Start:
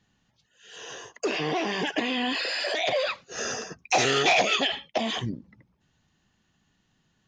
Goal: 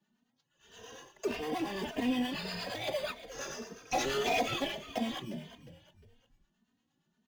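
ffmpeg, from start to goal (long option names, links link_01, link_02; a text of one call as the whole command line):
ffmpeg -i in.wav -filter_complex "[0:a]highpass=frequency=160:width=0.5412,highpass=frequency=160:width=1.3066,equalizer=frequency=240:width_type=o:width=0.28:gain=9.5,asplit=2[link_01][link_02];[link_02]acrusher=samples=16:mix=1:aa=0.000001,volume=-5.5dB[link_03];[link_01][link_03]amix=inputs=2:normalize=0,acrossover=split=720[link_04][link_05];[link_04]aeval=exprs='val(0)*(1-0.5/2+0.5/2*cos(2*PI*8.6*n/s))':channel_layout=same[link_06];[link_05]aeval=exprs='val(0)*(1-0.5/2-0.5/2*cos(2*PI*8.6*n/s))':channel_layout=same[link_07];[link_06][link_07]amix=inputs=2:normalize=0,asplit=2[link_08][link_09];[link_09]asplit=3[link_10][link_11][link_12];[link_10]adelay=356,afreqshift=-70,volume=-13.5dB[link_13];[link_11]adelay=712,afreqshift=-140,volume=-22.4dB[link_14];[link_12]adelay=1068,afreqshift=-210,volume=-31.2dB[link_15];[link_13][link_14][link_15]amix=inputs=3:normalize=0[link_16];[link_08][link_16]amix=inputs=2:normalize=0,asplit=2[link_17][link_18];[link_18]adelay=3,afreqshift=1.7[link_19];[link_17][link_19]amix=inputs=2:normalize=1,volume=-6.5dB" out.wav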